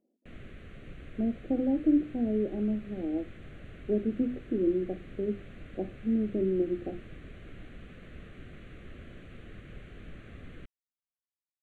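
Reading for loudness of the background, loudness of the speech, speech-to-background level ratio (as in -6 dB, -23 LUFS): -49.5 LUFS, -31.0 LUFS, 18.5 dB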